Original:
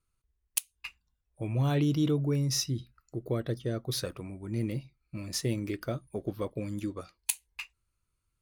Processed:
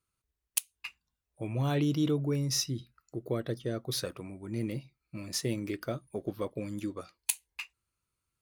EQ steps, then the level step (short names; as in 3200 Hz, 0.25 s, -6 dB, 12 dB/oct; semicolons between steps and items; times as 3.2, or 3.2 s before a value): HPF 140 Hz 6 dB/oct; 0.0 dB